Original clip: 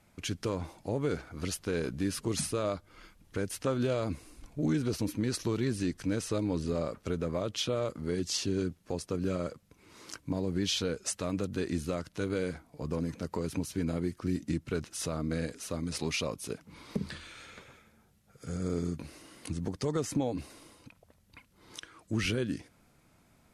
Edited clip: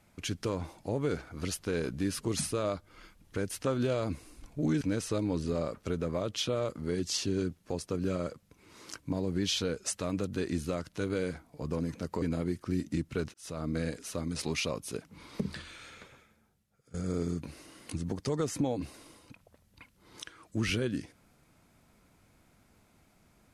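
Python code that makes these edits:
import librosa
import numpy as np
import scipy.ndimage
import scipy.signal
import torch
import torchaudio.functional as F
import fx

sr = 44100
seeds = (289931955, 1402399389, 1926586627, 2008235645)

y = fx.edit(x, sr, fx.cut(start_s=4.81, length_s=1.2),
    fx.cut(start_s=13.42, length_s=0.36),
    fx.fade_in_span(start_s=14.9, length_s=0.34),
    fx.fade_out_to(start_s=17.44, length_s=1.06, floor_db=-19.5), tone=tone)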